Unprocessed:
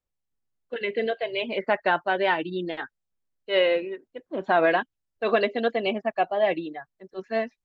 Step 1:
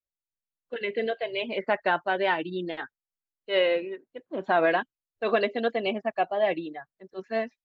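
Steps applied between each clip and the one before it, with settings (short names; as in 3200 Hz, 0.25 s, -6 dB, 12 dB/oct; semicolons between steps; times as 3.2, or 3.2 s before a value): spectral noise reduction 15 dB; gain -2 dB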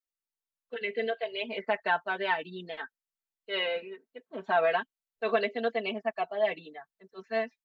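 low shelf 420 Hz -7.5 dB; comb 4.5 ms, depth 83%; gain -4.5 dB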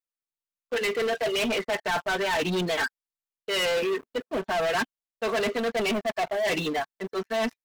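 reverse; compressor 20:1, threshold -36 dBFS, peak gain reduction 16.5 dB; reverse; sample leveller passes 5; gain +4 dB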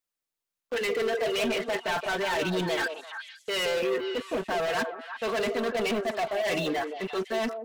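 limiter -31 dBFS, peak gain reduction 9 dB; on a send: delay with a stepping band-pass 0.17 s, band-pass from 460 Hz, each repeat 1.4 oct, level -3.5 dB; on the sum: gain +5.5 dB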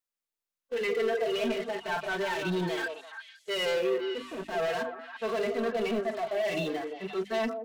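notches 50/100/150/200/250/300 Hz; harmonic-percussive split percussive -15 dB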